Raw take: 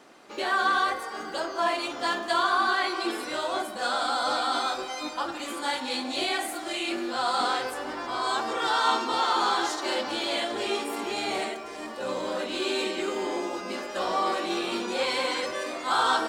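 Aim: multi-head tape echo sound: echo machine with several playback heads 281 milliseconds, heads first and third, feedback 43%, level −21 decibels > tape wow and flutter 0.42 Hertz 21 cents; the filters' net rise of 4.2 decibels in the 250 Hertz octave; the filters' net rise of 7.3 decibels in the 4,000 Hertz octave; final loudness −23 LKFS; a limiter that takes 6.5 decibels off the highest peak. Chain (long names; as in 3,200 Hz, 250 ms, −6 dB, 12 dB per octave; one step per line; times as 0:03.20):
parametric band 250 Hz +6 dB
parametric band 4,000 Hz +8.5 dB
brickwall limiter −16.5 dBFS
echo machine with several playback heads 281 ms, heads first and third, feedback 43%, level −21 dB
tape wow and flutter 0.42 Hz 21 cents
level +3 dB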